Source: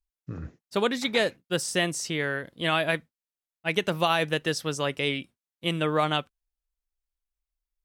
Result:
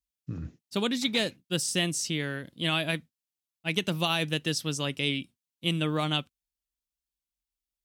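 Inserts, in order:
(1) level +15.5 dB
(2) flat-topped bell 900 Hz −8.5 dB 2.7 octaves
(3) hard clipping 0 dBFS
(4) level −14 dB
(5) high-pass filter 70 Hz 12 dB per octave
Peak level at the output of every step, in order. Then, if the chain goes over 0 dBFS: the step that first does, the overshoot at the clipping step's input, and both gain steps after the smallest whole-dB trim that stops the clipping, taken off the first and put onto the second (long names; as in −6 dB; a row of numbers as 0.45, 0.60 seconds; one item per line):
+7.0, +3.5, 0.0, −14.0, −13.0 dBFS
step 1, 3.5 dB
step 1 +11.5 dB, step 4 −10 dB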